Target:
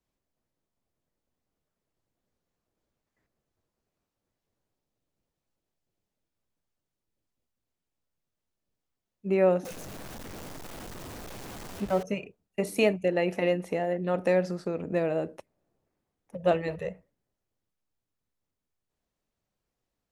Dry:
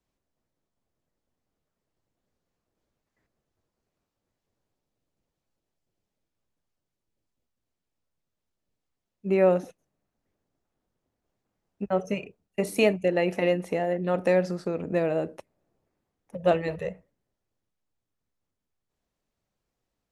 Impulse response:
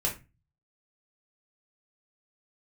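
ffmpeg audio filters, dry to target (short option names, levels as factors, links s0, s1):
-filter_complex "[0:a]asettb=1/sr,asplit=3[s0][s1][s2];[s0]atrim=end=9.654[s3];[s1]atrim=start=9.65:end=12.03,asetpts=PTS-STARTPTS,afade=t=in:d=0.004:c=qsin,afade=t=out:st=2.376:d=0.004:c=qsin,aeval=exprs='val(0)+0.5*0.0224*sgn(val(0))':c=same[s4];[s2]atrim=start=12.026[s5];[s3][s4]acrossfade=d=0.004:c1=hsin:c2=qsin[s6];[s6][s5]acrossfade=d=0.004:c1=qsin:c2=hsin,volume=0.794"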